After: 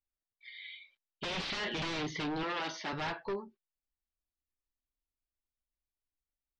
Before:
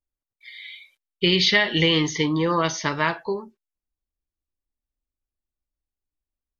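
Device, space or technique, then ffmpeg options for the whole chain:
synthesiser wavefolder: -filter_complex "[0:a]aeval=exprs='0.075*(abs(mod(val(0)/0.075+3,4)-2)-1)':c=same,lowpass=f=4.6k:w=0.5412,lowpass=f=4.6k:w=1.3066,asettb=1/sr,asplit=3[a][b][c];[a]atrim=end=2.434[d];[b]atrim=start=2.43:end=2.93,asetpts=PTS-STARTPTS,afade=t=in:d=0.004:c=qsin,afade=t=out:st=0.496:d=0.004:c=qsin,highpass=f=210:w=0.5412,highpass=f=210:w=1.3066[e];[c]atrim=start=2.926[f];[d][e]acrossfade=d=0.004:c1=hsin:c2=qsin[g];[g][f]acrossfade=d=0.004:c1=qsin:c2=hsin,volume=-7.5dB"

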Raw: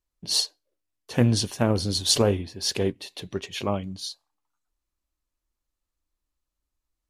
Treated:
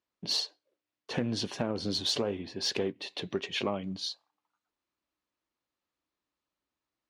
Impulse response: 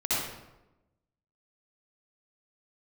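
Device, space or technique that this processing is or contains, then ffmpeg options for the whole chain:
AM radio: -af "highpass=180,lowpass=4.1k,acompressor=threshold=-29dB:ratio=10,asoftclip=type=tanh:threshold=-20dB,volume=3dB"

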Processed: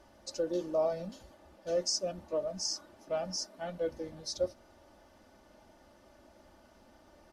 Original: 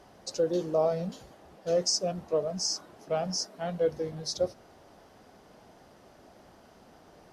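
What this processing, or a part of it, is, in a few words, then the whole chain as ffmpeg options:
low shelf boost with a cut just above: -af "lowshelf=f=110:g=5.5,equalizer=f=280:t=o:w=0.77:g=-2,aecho=1:1:3.4:0.63,volume=-6dB"

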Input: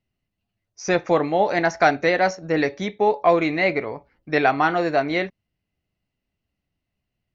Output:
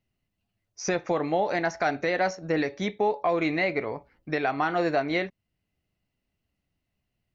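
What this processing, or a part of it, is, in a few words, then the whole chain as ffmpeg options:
stacked limiters: -af "alimiter=limit=-10dB:level=0:latency=1:release=154,alimiter=limit=-15dB:level=0:latency=1:release=429"

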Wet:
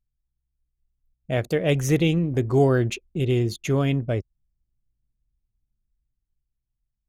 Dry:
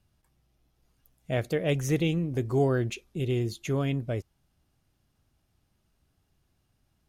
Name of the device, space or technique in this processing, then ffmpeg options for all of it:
voice memo with heavy noise removal: -af "anlmdn=0.0398,dynaudnorm=f=230:g=11:m=6dB"

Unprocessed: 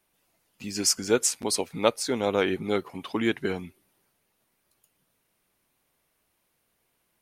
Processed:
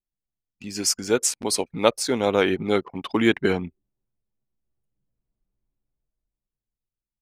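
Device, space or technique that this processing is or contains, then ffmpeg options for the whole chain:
voice memo with heavy noise removal: -af "anlmdn=0.158,dynaudnorm=f=260:g=11:m=15.5dB"

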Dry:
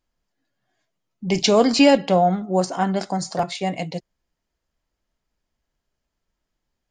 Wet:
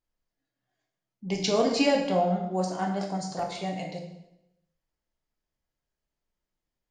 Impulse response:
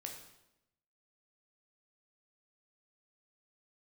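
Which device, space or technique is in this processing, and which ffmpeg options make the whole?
bathroom: -filter_complex "[1:a]atrim=start_sample=2205[a];[0:a][a]afir=irnorm=-1:irlink=0,volume=-5dB"

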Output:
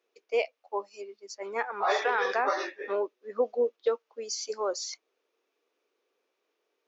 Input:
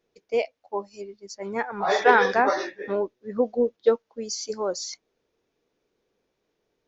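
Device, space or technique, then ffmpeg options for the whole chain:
laptop speaker: -af "highpass=f=330:w=0.5412,highpass=f=330:w=1.3066,equalizer=f=1.2k:t=o:w=0.34:g=6,equalizer=f=2.6k:t=o:w=0.54:g=5,alimiter=limit=-13dB:level=0:latency=1:release=150,volume=-3dB"

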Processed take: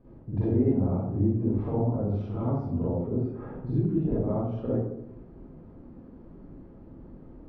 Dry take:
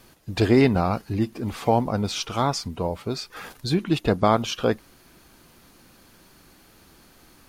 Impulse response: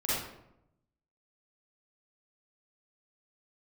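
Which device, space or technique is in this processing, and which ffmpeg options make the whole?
television next door: -filter_complex "[0:a]acompressor=threshold=-32dB:ratio=4,lowpass=470[a];[1:a]atrim=start_sample=2205[b];[a][b]afir=irnorm=-1:irlink=0,asettb=1/sr,asplit=3[c][d][e];[c]atrim=end=3.074[f];[d]atrim=start=3.07:end=3.67,asetpts=PTS-STARTPTS,afade=t=in:d=0.004:c=qsin,afade=t=out:st=0.596:d=0.004:c=qsin,equalizer=f=12k:t=o:w=2.3:g=-14.5[g];[e]atrim=start=3.666[h];[f][g]acrossfade=d=0.004:c1=hsin:c2=qsin[i];[i][h]acrossfade=d=0.004:c1=qsin:c2=hsin"

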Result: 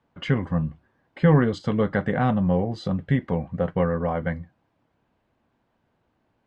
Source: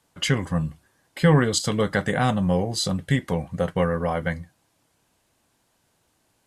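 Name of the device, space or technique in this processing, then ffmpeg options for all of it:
phone in a pocket: -af "lowpass=3.1k,equalizer=f=230:t=o:w=0.25:g=4,highshelf=f=2.4k:g=-10.5"

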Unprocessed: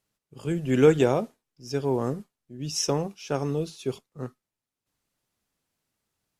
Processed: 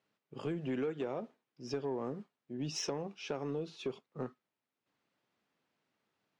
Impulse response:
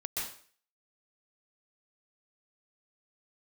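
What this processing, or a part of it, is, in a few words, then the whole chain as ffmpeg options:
AM radio: -af "highpass=190,lowpass=3.2k,acompressor=threshold=-35dB:ratio=8,asoftclip=type=tanh:threshold=-29dB,volume=2.5dB"

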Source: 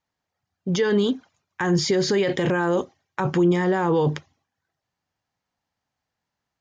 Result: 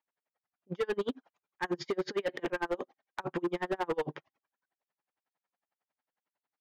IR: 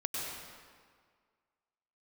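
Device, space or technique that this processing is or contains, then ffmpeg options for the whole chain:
helicopter radio: -af "highpass=340,lowpass=2.6k,aeval=exprs='val(0)*pow(10,-36*(0.5-0.5*cos(2*PI*11*n/s))/20)':c=same,asoftclip=type=hard:threshold=-26dB"

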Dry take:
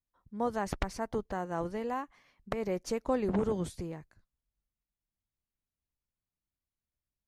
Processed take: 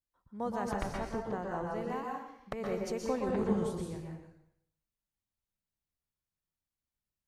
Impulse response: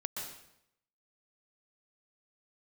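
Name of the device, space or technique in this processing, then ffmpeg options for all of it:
bathroom: -filter_complex "[0:a]asettb=1/sr,asplit=3[a][b][c];[a]atrim=end=0.714[d];[b]atrim=start=0.71:end=1.67,asetpts=PTS-STARTPTS,afade=t=in:d=0.004:c=qsin,afade=t=out:st=0.956:d=0.004:c=qsin,bass=f=250:g=0,treble=f=4k:g=-6[e];[c]atrim=start=1.666[f];[d][e]acrossfade=d=0.004:c1=hsin:c2=qsin[g];[g][f]acrossfade=d=0.004:c1=qsin:c2=hsin[h];[1:a]atrim=start_sample=2205[i];[h][i]afir=irnorm=-1:irlink=0,volume=-2.5dB"

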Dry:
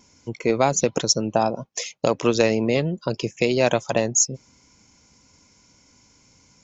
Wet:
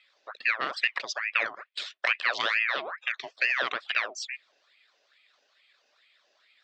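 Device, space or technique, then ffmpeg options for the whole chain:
voice changer toy: -filter_complex "[0:a]aeval=exprs='val(0)*sin(2*PI*1400*n/s+1400*0.65/2.3*sin(2*PI*2.3*n/s))':c=same,highpass=540,equalizer=f=580:t=q:w=4:g=6,equalizer=f=880:t=q:w=4:g=-8,equalizer=f=1.8k:t=q:w=4:g=4,equalizer=f=2.5k:t=q:w=4:g=6,equalizer=f=3.6k:t=q:w=4:g=7,lowpass=f=4.7k:w=0.5412,lowpass=f=4.7k:w=1.3066,asettb=1/sr,asplit=3[a][b][c];[a]atrim=end=1.564[d];[b]atrim=start=1.56:end=2.63,asetpts=PTS-STARTPTS,afade=t=in:d=0.004:c=qsin,afade=t=out:st=1.066:d=0.004:c=qsin,highshelf=f=4.9k:g=9.5[e];[c]atrim=start=2.626[f];[d][e]acrossfade=d=0.004:c1=hsin:c2=qsin[g];[g][f]acrossfade=d=0.004:c1=qsin:c2=hsin,volume=-7.5dB"

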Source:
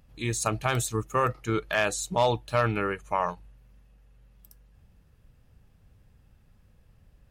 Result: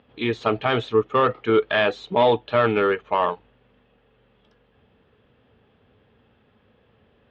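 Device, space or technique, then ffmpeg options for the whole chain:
overdrive pedal into a guitar cabinet: -filter_complex "[0:a]asplit=2[a][b];[b]highpass=f=720:p=1,volume=14dB,asoftclip=type=tanh:threshold=-12dB[c];[a][c]amix=inputs=2:normalize=0,lowpass=f=1.4k:p=1,volume=-6dB,highpass=90,equalizer=f=160:t=q:w=4:g=-5,equalizer=f=240:t=q:w=4:g=7,equalizer=f=430:t=q:w=4:g=9,equalizer=f=3.3k:t=q:w=4:g=9,lowpass=f=3.8k:w=0.5412,lowpass=f=3.8k:w=1.3066,volume=3dB"

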